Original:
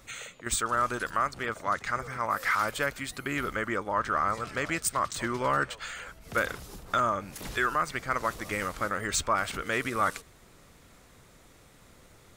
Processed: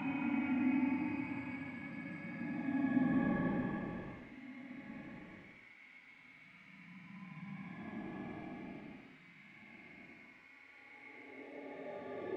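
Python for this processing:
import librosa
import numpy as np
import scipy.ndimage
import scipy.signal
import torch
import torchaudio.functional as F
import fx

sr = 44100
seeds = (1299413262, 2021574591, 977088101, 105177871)

p1 = fx.octave_mirror(x, sr, pivot_hz=590.0)
p2 = fx.doppler_pass(p1, sr, speed_mps=9, closest_m=2.1, pass_at_s=4.86)
p3 = fx.comb_fb(p2, sr, f0_hz=280.0, decay_s=0.34, harmonics='all', damping=0.0, mix_pct=90)
p4 = fx.over_compress(p3, sr, threshold_db=-44.0, ratio=-1.0)
p5 = p3 + (p4 * librosa.db_to_amplitude(-1.0))
p6 = fx.peak_eq(p5, sr, hz=200.0, db=14.5, octaves=2.8)
p7 = fx.gate_flip(p6, sr, shuts_db=-32.0, range_db=-35)
p8 = fx.quant_dither(p7, sr, seeds[0], bits=12, dither='triangular')
p9 = fx.lowpass_res(p8, sr, hz=2200.0, q=11.0)
p10 = fx.low_shelf(p9, sr, hz=340.0, db=-6.5)
p11 = p10 + fx.room_early_taps(p10, sr, ms=(16, 65), db=(-4.0, -14.5), dry=0)
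p12 = fx.paulstretch(p11, sr, seeds[1], factor=27.0, window_s=0.05, from_s=3.36)
y = p12 * librosa.db_to_amplitude(9.0)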